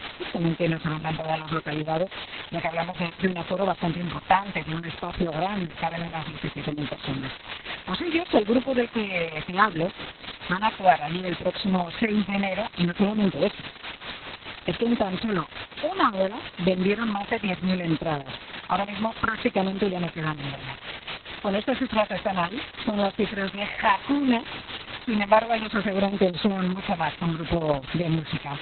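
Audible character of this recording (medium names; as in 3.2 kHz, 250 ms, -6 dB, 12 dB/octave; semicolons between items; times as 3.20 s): phasing stages 6, 0.62 Hz, lowest notch 340–2100 Hz; a quantiser's noise floor 6-bit, dither triangular; tremolo triangle 4.7 Hz, depth 70%; Opus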